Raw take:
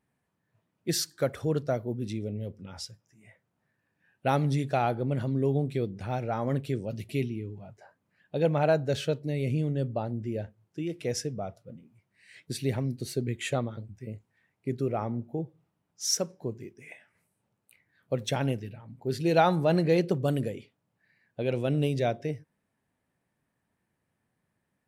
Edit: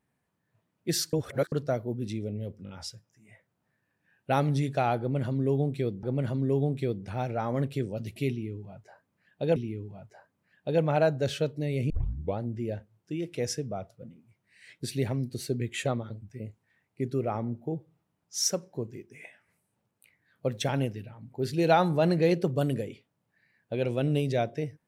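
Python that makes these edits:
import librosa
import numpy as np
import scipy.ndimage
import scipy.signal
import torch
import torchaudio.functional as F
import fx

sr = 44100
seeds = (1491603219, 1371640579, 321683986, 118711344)

y = fx.edit(x, sr, fx.reverse_span(start_s=1.13, length_s=0.39),
    fx.stutter(start_s=2.65, slice_s=0.02, count=3),
    fx.repeat(start_s=4.96, length_s=1.03, count=2),
    fx.repeat(start_s=7.23, length_s=1.26, count=2),
    fx.tape_start(start_s=9.57, length_s=0.48), tone=tone)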